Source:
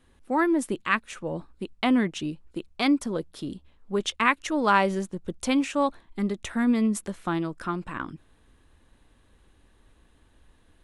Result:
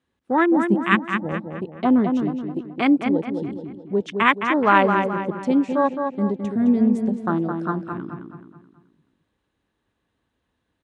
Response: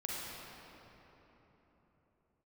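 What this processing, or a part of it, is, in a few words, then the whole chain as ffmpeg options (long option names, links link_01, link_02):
over-cleaned archive recording: -filter_complex "[0:a]highpass=100,lowpass=7100,afwtdn=0.0398,asettb=1/sr,asplit=3[link_01][link_02][link_03];[link_01]atrim=end=0.564[link_04];[link_02]atrim=start=0.56:end=1.33,asetpts=PTS-STARTPTS,afade=type=in:duration=0.004:curve=qsin,afade=type=out:start_time=0.766:duration=0.004:curve=qsin,equalizer=frequency=200:width_type=o:width=0.33:gain=11,equalizer=frequency=500:width_type=o:width=0.33:gain=-7,equalizer=frequency=8000:width_type=o:width=0.33:gain=5[link_05];[link_03]atrim=start=1.326[link_06];[link_04][link_05]acrossfade=duration=0.004:curve1=hsin:curve2=qsin[link_07];[link_07][link_06]acrossfade=duration=0.004:curve1=qsin:curve2=hsin,asplit=2[link_08][link_09];[link_09]adelay=214,lowpass=frequency=3700:poles=1,volume=-5.5dB,asplit=2[link_10][link_11];[link_11]adelay=214,lowpass=frequency=3700:poles=1,volume=0.44,asplit=2[link_12][link_13];[link_13]adelay=214,lowpass=frequency=3700:poles=1,volume=0.44,asplit=2[link_14][link_15];[link_15]adelay=214,lowpass=frequency=3700:poles=1,volume=0.44,asplit=2[link_16][link_17];[link_17]adelay=214,lowpass=frequency=3700:poles=1,volume=0.44[link_18];[link_08][link_10][link_12][link_14][link_16][link_18]amix=inputs=6:normalize=0,volume=5dB"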